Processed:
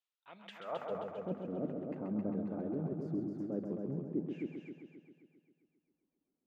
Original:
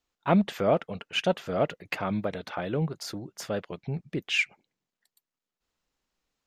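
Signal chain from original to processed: bell 3600 Hz -12.5 dB 2.2 oct; de-hum 50.05 Hz, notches 5; reverse; compressor 6:1, threshold -32 dBFS, peak gain reduction 13.5 dB; reverse; band-pass sweep 3300 Hz -> 270 Hz, 0.46–1.08; multi-head echo 0.133 s, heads first and second, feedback 51%, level -6 dB; on a send at -20 dB: reverb RT60 0.45 s, pre-delay 40 ms; on the sum: gain +4.5 dB

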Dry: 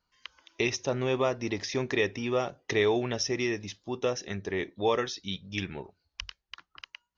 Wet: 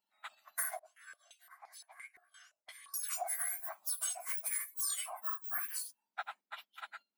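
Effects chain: spectrum mirrored in octaves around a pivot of 2000 Hz; gate -55 dBFS, range -9 dB; tilt +3.5 dB/oct; compressor 10:1, threshold -34 dBFS, peak gain reduction 17.5 dB; 0.79–2.94 stepped band-pass 5.8 Hz 400–4800 Hz

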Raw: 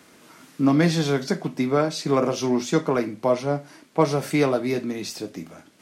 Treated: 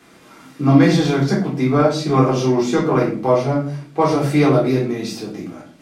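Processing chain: high shelf 5900 Hz -5 dB; shoebox room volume 340 m³, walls furnished, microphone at 3.7 m; gain -1 dB

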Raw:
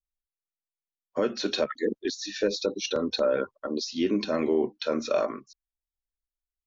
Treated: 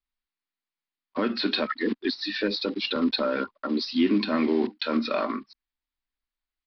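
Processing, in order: block floating point 5-bit; in parallel at -2.5 dB: limiter -26 dBFS, peak gain reduction 11.5 dB; on the sum: downsampling 11025 Hz; graphic EQ 125/250/500/1000/2000/4000 Hz -7/+11/-6/+6/+6/+4 dB; gain -4 dB

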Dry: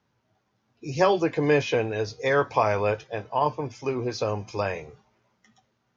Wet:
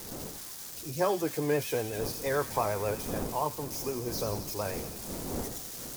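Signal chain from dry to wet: switching spikes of -22.5 dBFS; wind noise 440 Hz -35 dBFS; bell 2700 Hz -6 dB 1.2 oct; thin delay 86 ms, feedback 78%, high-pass 2900 Hz, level -7 dB; vibrato 8.5 Hz 53 cents; gain -7 dB

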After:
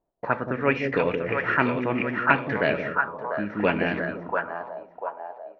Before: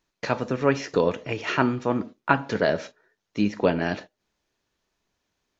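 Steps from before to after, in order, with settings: split-band echo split 540 Hz, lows 0.173 s, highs 0.692 s, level -4 dB; 2.81–3.5 compressor 2.5:1, threshold -25 dBFS, peak gain reduction 6 dB; envelope low-pass 680–2400 Hz up, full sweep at -19 dBFS; gain -3 dB

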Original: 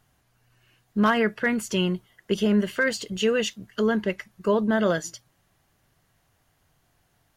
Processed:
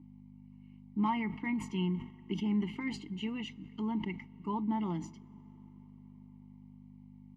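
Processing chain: hum 50 Hz, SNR 11 dB; vowel filter u; bell 170 Hz +11 dB 0.28 oct; comb 1 ms, depth 59%; on a send at -24 dB: reverb RT60 5.2 s, pre-delay 55 ms; on the sum: sustainer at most 120 dB/s; gain +1 dB

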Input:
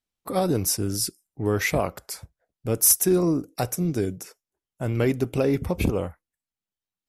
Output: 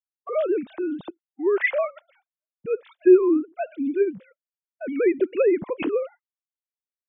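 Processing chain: sine-wave speech; expander -44 dBFS; gain +1.5 dB

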